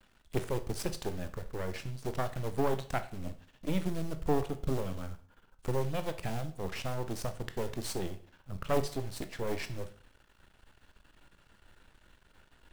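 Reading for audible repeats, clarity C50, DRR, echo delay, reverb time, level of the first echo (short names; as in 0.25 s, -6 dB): none, 14.0 dB, 9.0 dB, none, 0.45 s, none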